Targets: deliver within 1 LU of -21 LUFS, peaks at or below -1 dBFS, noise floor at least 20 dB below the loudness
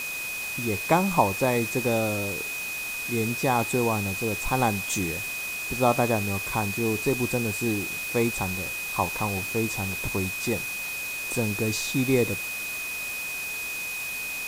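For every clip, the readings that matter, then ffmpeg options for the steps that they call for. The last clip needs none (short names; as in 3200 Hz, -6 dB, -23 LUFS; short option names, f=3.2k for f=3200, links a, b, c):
steady tone 2500 Hz; tone level -31 dBFS; noise floor -33 dBFS; noise floor target -47 dBFS; loudness -26.5 LUFS; peak -6.5 dBFS; loudness target -21.0 LUFS
-> -af "bandreject=f=2.5k:w=30"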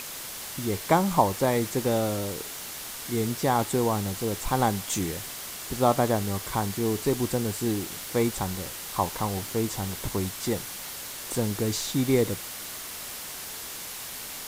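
steady tone none; noise floor -38 dBFS; noise floor target -48 dBFS
-> -af "afftdn=nr=10:nf=-38"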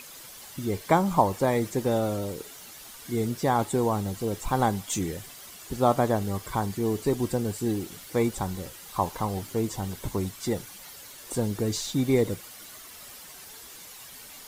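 noise floor -46 dBFS; noise floor target -48 dBFS
-> -af "afftdn=nr=6:nf=-46"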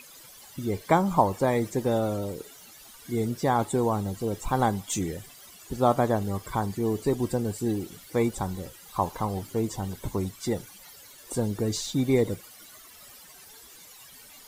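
noise floor -50 dBFS; loudness -28.0 LUFS; peak -7.0 dBFS; loudness target -21.0 LUFS
-> -af "volume=7dB,alimiter=limit=-1dB:level=0:latency=1"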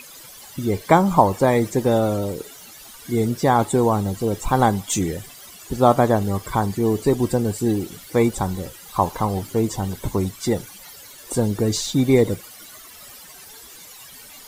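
loudness -21.0 LUFS; peak -1.0 dBFS; noise floor -43 dBFS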